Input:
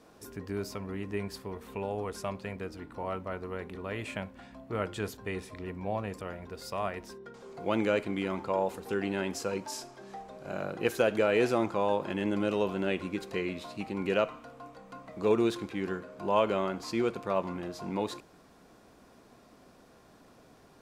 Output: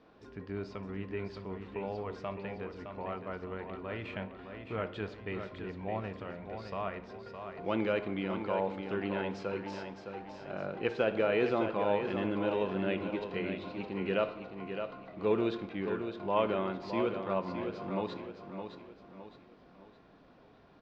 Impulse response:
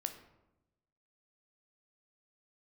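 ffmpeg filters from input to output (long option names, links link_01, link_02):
-filter_complex "[0:a]lowpass=frequency=4000:width=0.5412,lowpass=frequency=4000:width=1.3066,aecho=1:1:613|1226|1839|2452:0.422|0.164|0.0641|0.025,asplit=2[link_01][link_02];[1:a]atrim=start_sample=2205[link_03];[link_02][link_03]afir=irnorm=-1:irlink=0,volume=0.5dB[link_04];[link_01][link_04]amix=inputs=2:normalize=0,volume=-9dB"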